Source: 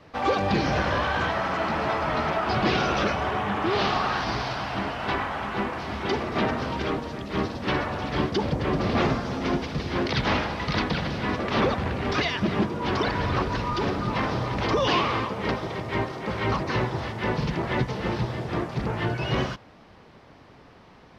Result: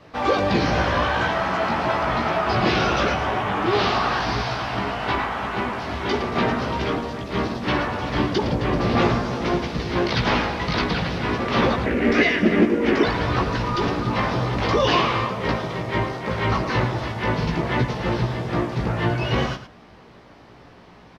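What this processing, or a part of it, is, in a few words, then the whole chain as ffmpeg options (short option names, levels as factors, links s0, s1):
slapback doubling: -filter_complex "[0:a]asplit=3[s0][s1][s2];[s1]adelay=17,volume=0.631[s3];[s2]adelay=112,volume=0.316[s4];[s0][s3][s4]amix=inputs=3:normalize=0,asettb=1/sr,asplit=3[s5][s6][s7];[s5]atrim=end=11.864[s8];[s6]atrim=start=11.86:end=13.04,asetpts=PTS-STARTPTS,afade=t=in:d=0.004:c=qsin,afade=t=out:st=1.176:d=0.004:c=qsin,equalizer=f=125:t=o:w=1:g=-11,equalizer=f=250:t=o:w=1:g=10,equalizer=f=500:t=o:w=1:g=5,equalizer=f=1000:t=o:w=1:g=-8,equalizer=f=2000:t=o:w=1:g=9,equalizer=f=4000:t=o:w=1:g=-7[s9];[s7]atrim=start=13.036[s10];[s8][s9]acrossfade=d=0.004:c1=hsin:c2=qsin[s11];[s11][s10]acrossfade=d=0.004:c1=qsin:c2=hsin,volume=1.26"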